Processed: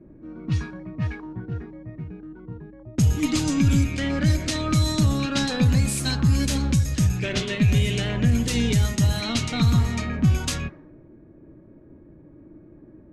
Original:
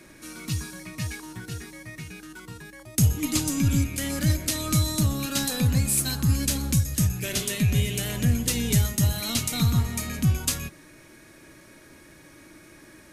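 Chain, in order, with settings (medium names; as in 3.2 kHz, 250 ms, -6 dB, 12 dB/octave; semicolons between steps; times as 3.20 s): level-controlled noise filter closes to 340 Hz, open at -20 dBFS; peak limiter -16 dBFS, peak gain reduction 5.5 dB; distance through air 62 m; trim +5.5 dB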